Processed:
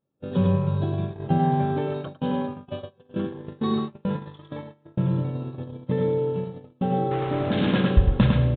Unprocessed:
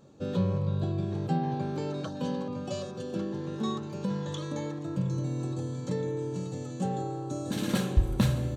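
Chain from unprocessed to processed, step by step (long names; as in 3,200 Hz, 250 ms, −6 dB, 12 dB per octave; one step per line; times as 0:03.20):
0:07.11–0:07.71: converter with a step at zero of −32.5 dBFS
on a send: repeating echo 104 ms, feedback 15%, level −3.5 dB
on the sum: downsampling to 8,000 Hz
noise gate −31 dBFS, range −31 dB
level +5.5 dB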